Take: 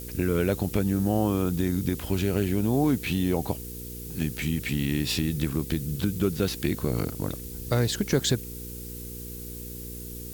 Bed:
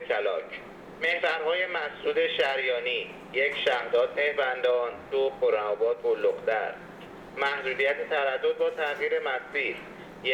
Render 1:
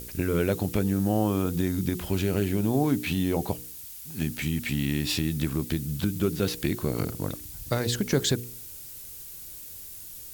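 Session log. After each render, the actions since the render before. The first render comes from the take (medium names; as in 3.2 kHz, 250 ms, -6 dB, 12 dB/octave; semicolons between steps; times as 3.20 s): de-hum 60 Hz, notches 8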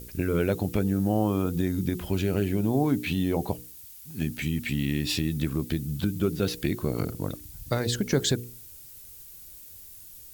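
noise reduction 6 dB, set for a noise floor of -42 dBFS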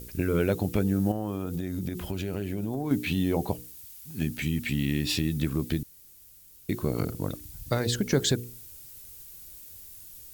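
1.11–2.91 s: compression, threshold -27 dBFS; 5.83–6.69 s: room tone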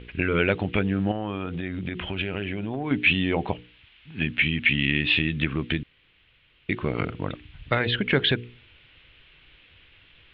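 steep low-pass 3.3 kHz 48 dB/octave; peaking EQ 2.6 kHz +15 dB 2.2 oct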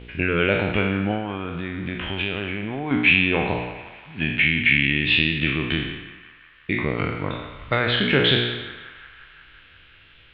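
spectral sustain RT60 0.95 s; band-passed feedback delay 176 ms, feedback 77%, band-pass 1.4 kHz, level -14 dB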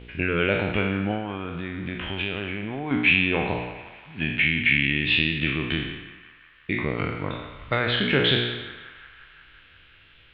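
trim -2.5 dB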